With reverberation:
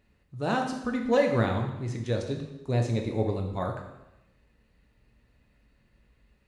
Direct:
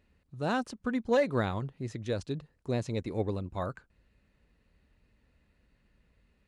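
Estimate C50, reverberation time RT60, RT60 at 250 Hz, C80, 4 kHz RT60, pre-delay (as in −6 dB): 6.0 dB, 0.95 s, 0.85 s, 8.5 dB, 0.85 s, 7 ms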